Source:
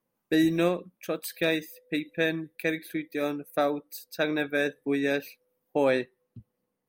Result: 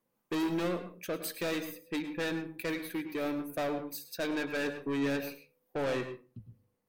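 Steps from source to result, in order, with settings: saturation -29.5 dBFS, distortion -6 dB; hum notches 50/100/150 Hz; reverberation RT60 0.30 s, pre-delay 99 ms, DRR 9 dB

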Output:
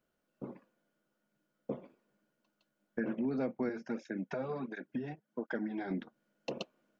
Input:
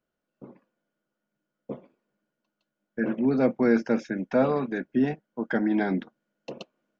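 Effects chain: compression 4:1, threshold -36 dBFS, peak gain reduction 16.5 dB; 3.69–5.91 s: cancelling through-zero flanger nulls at 1.4 Hz, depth 4.8 ms; trim +2 dB

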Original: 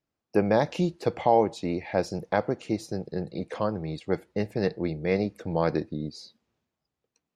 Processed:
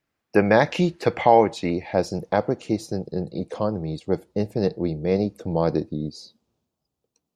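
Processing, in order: peaking EQ 1.9 kHz +7.5 dB 1.3 oct, from 1.70 s -4.5 dB, from 2.99 s -11 dB; trim +4.5 dB

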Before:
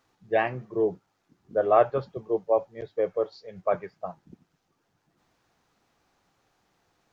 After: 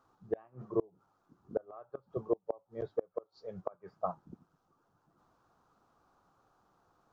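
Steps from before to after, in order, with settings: resonant high shelf 1.6 kHz -7.5 dB, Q 3; inverted gate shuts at -17 dBFS, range -32 dB; trim -1.5 dB

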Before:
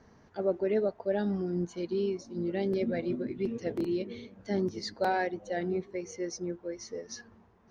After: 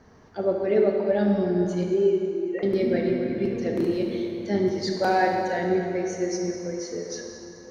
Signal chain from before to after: 1.83–2.63 s: formants replaced by sine waves; plate-style reverb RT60 3 s, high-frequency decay 0.75×, DRR 0 dB; trim +4.5 dB

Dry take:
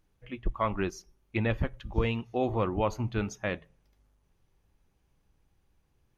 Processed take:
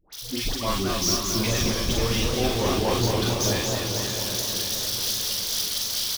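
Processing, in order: zero-crossing glitches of -30.5 dBFS; recorder AGC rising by 17 dB/s; high-order bell 4.3 kHz +13 dB 1.1 oct; in parallel at -7 dB: integer overflow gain 20.5 dB; on the sum: doubling 42 ms -3 dB; phase dispersion highs, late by 109 ms, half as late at 1.1 kHz; on a send: echo whose repeats swap between lows and highs 270 ms, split 960 Hz, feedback 75%, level -5.5 dB; on the sum: modulated delay 224 ms, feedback 69%, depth 156 cents, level -5 dB; trim -2 dB

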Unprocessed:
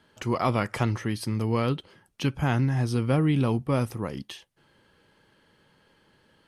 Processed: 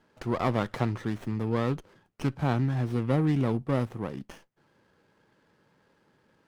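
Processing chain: high-pass 99 Hz 12 dB/octave; treble shelf 4.7 kHz -7 dB; sliding maximum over 9 samples; trim -2 dB

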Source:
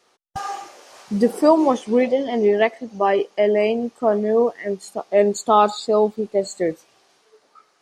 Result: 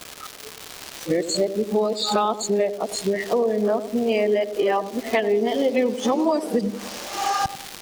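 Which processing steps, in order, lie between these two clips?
reverse the whole clip; crackle 500 per s -32 dBFS; compression 6:1, threshold -28 dBFS, peak gain reduction 17.5 dB; dynamic bell 4.1 kHz, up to +5 dB, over -50 dBFS, Q 0.86; on a send: band-passed feedback delay 95 ms, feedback 66%, band-pass 330 Hz, level -9.5 dB; on the sum: trim +8.5 dB

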